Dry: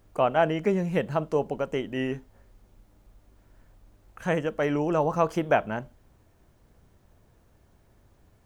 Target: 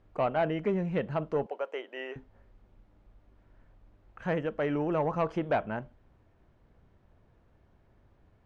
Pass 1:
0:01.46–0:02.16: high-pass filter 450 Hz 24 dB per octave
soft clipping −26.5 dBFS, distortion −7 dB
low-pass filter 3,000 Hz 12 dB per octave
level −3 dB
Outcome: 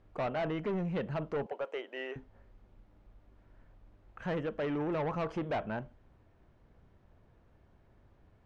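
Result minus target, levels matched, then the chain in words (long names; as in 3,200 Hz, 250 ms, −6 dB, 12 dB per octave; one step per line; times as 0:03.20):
soft clipping: distortion +9 dB
0:01.46–0:02.16: high-pass filter 450 Hz 24 dB per octave
soft clipping −16.5 dBFS, distortion −16 dB
low-pass filter 3,000 Hz 12 dB per octave
level −3 dB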